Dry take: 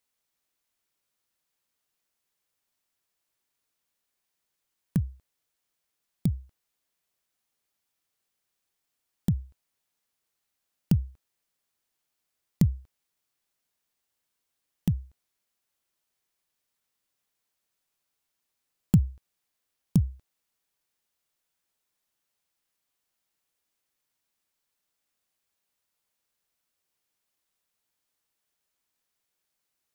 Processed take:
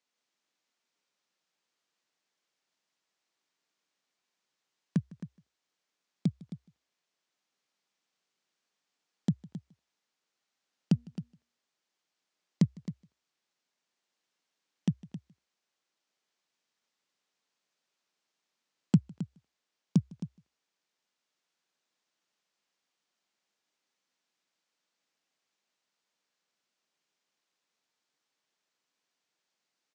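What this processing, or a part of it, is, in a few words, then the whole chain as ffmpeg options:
ducked delay: -filter_complex "[0:a]lowpass=frequency=6800:width=0.5412,lowpass=frequency=6800:width=1.3066,asettb=1/sr,asplit=3[link_01][link_02][link_03];[link_01]atrim=end=10.934[link_04];[link_02]atrim=start=10.93:end=12.64,asetpts=PTS-STARTPTS,afade=type=in:duration=0.004:curve=qsin,afade=type=out:start_time=1.706:duration=0.004:curve=qsin,bandreject=frequency=236.8:width_type=h:width=4,bandreject=frequency=473.6:width_type=h:width=4,bandreject=frequency=710.4:width_type=h:width=4,bandreject=frequency=947.2:width_type=h:width=4,bandreject=frequency=1184:width_type=h:width=4,bandreject=frequency=1420.8:width_type=h:width=4,bandreject=frequency=1657.6:width_type=h:width=4,bandreject=frequency=1894.4:width_type=h:width=4,bandreject=frequency=2131.2:width_type=h:width=4,bandreject=frequency=2368:width_type=h:width=4,bandreject=frequency=2604.8:width_type=h:width=4,bandreject=frequency=2841.6:width_type=h:width=4[link_05];[link_03]atrim=start=12.636[link_06];[link_04][link_05]acrossfade=duration=0.004:curve1=hsin:curve2=qsin[link_07];[link_07][link_06]acrossfade=duration=0.004:curve1=qsin:curve2=hsin,asplit=3[link_08][link_09][link_10];[link_09]adelay=155,volume=-4dB[link_11];[link_10]apad=whole_len=1327470[link_12];[link_11][link_12]sidechaincompress=threshold=-42dB:ratio=5:attack=7.5:release=911[link_13];[link_08][link_13]amix=inputs=2:normalize=0,highpass=frequency=160:width=0.5412,highpass=frequency=160:width=1.3066,aecho=1:1:266:0.211"

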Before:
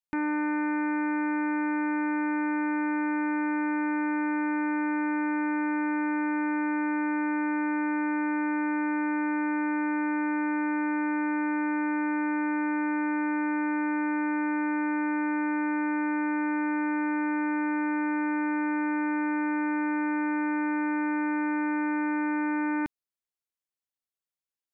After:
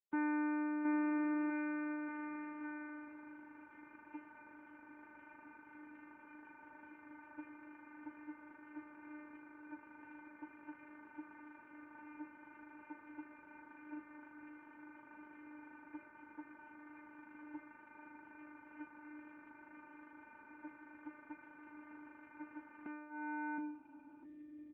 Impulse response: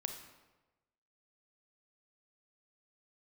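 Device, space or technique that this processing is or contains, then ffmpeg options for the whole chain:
mobile call with aggressive noise cancelling: -af "highpass=frequency=110:poles=1,aecho=1:1:720|1368|1951|2476|2948:0.631|0.398|0.251|0.158|0.1,afftdn=noise_reduction=22:noise_floor=-31,volume=-6dB" -ar 8000 -c:a libopencore_amrnb -b:a 7950

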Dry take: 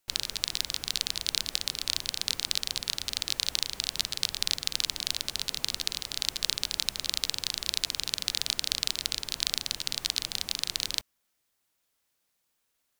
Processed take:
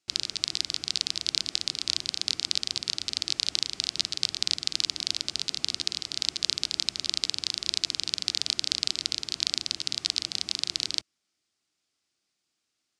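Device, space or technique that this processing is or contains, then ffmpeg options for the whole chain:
car door speaker: -af "highpass=87,equalizer=frequency=330:width_type=q:width=4:gain=6,equalizer=frequency=520:width_type=q:width=4:gain=-8,equalizer=frequency=940:width_type=q:width=4:gain=-8,equalizer=frequency=1700:width_type=q:width=4:gain=-4,equalizer=frequency=4900:width_type=q:width=4:gain=5,lowpass=frequency=8200:width=0.5412,lowpass=frequency=8200:width=1.3066"

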